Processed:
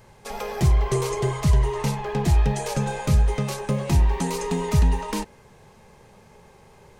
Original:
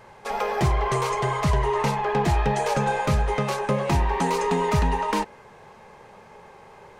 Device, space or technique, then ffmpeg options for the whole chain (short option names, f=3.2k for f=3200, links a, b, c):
smiley-face EQ: -filter_complex "[0:a]lowshelf=f=150:g=6.5,equalizer=f=1.1k:t=o:w=2.9:g=-8,highshelf=f=5.7k:g=6.5,asettb=1/sr,asplit=3[a][b][c];[a]atrim=end=0.914[d];[b]atrim=start=0.91:end=1.32,asetpts=PTS-STARTPTS,afade=t=in:d=0.004:c=qsin,afade=t=out:st=0.406:d=0.004:c=qsin,equalizer=f=370:t=o:w=0.77:g=7.5[e];[c]atrim=start=1.316[f];[d][e]acrossfade=d=0.004:c1=hsin:c2=qsin[g];[g][f]acrossfade=d=0.004:c1=qsin:c2=hsin"